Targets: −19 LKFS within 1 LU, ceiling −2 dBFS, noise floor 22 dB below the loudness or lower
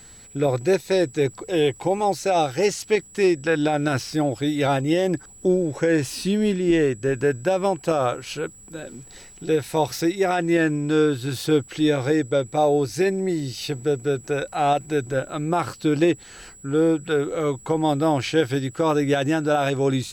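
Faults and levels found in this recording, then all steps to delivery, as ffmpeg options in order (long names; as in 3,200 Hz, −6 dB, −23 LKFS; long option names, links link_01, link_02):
interfering tone 7,800 Hz; level of the tone −45 dBFS; integrated loudness −22.5 LKFS; sample peak −9.0 dBFS; target loudness −19.0 LKFS
→ -af "bandreject=frequency=7800:width=30"
-af "volume=3.5dB"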